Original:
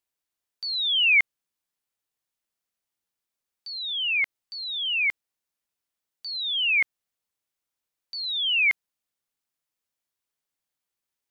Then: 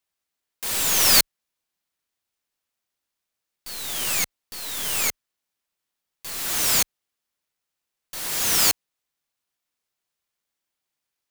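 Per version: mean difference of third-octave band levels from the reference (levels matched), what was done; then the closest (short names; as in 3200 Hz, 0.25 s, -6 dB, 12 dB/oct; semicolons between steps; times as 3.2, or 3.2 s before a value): 27.0 dB: tracing distortion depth 0.38 ms; tilt +1.5 dB/oct; clock jitter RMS 0.029 ms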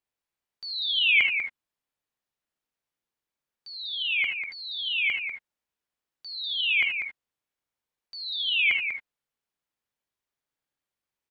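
2.5 dB: high shelf 3900 Hz -10.5 dB; echo 0.194 s -7.5 dB; non-linear reverb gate 0.1 s rising, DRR 4.5 dB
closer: second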